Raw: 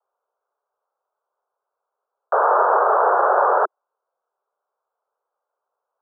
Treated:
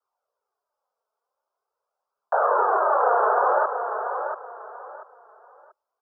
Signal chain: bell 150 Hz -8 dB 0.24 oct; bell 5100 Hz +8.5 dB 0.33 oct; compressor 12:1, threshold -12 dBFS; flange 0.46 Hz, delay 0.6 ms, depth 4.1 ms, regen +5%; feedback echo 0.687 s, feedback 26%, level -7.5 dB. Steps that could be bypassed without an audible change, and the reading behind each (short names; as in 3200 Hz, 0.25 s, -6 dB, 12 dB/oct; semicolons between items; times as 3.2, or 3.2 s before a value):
bell 150 Hz: input band starts at 320 Hz; bell 5100 Hz: input band ends at 1800 Hz